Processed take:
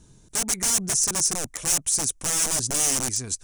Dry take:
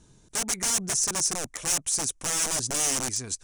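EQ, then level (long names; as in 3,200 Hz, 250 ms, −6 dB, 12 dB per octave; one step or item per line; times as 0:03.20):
low-shelf EQ 280 Hz +5 dB
high-shelf EQ 8,100 Hz +7.5 dB
0.0 dB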